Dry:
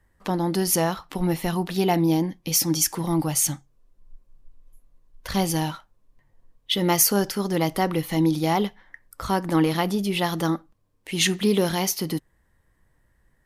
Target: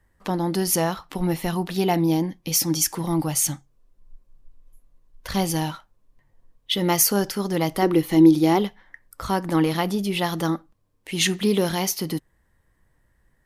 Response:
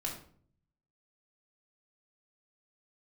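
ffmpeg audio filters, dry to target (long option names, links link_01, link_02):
-filter_complex "[0:a]asettb=1/sr,asplit=3[link_01][link_02][link_03];[link_01]atrim=end=7.824[link_04];[link_02]atrim=start=7.82:end=8.59,asetpts=PTS-STARTPTS,afade=type=in:duration=0.004:curve=qsin,afade=type=out:start_time=0.766:duration=0.004:curve=qsin,equalizer=frequency=350:width_type=o:width=0.44:gain=11.5[link_05];[link_03]atrim=start=8.586[link_06];[link_04][link_05]acrossfade=duration=0.004:curve1=hsin:curve2=qsin[link_07];[link_07][link_06]acrossfade=duration=0.004:curve1=qsin:curve2=hsin"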